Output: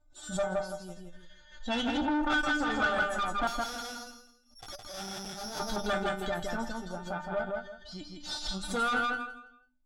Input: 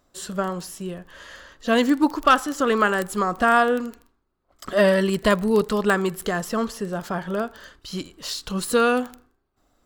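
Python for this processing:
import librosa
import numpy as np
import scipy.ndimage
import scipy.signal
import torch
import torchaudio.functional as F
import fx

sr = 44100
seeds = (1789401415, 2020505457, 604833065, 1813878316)

y = fx.bin_expand(x, sr, power=1.5)
y = fx.low_shelf(y, sr, hz=120.0, db=11.0)
y = fx.hum_notches(y, sr, base_hz=50, count=6)
y = fx.comb_fb(y, sr, f0_hz=300.0, decay_s=0.25, harmonics='all', damping=0.0, mix_pct=100)
y = fx.resample_bad(y, sr, factor=8, down='none', up='zero_stuff', at=(3.47, 5.6))
y = fx.over_compress(y, sr, threshold_db=-33.0, ratio=-0.5)
y = fx.echo_feedback(y, sr, ms=164, feedback_pct=28, wet_db=-3.5)
y = fx.tube_stage(y, sr, drive_db=37.0, bias=0.7)
y = scipy.signal.sosfilt(scipy.signal.butter(2, 6900.0, 'lowpass', fs=sr, output='sos'), y)
y = fx.low_shelf(y, sr, hz=290.0, db=7.5)
y = fx.small_body(y, sr, hz=(790.0, 1400.0, 3400.0), ring_ms=25, db=16)
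y = fx.pre_swell(y, sr, db_per_s=120.0)
y = y * librosa.db_to_amplitude(5.5)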